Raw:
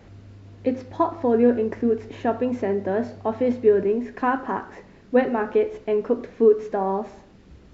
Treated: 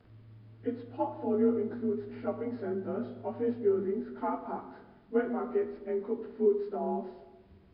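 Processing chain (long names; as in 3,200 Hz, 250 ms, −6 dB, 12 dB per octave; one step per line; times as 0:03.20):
partials spread apart or drawn together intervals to 89%
notch filter 540 Hz, Q 12
on a send: convolution reverb RT60 1.2 s, pre-delay 9 ms, DRR 10 dB
on the sum: level −9 dB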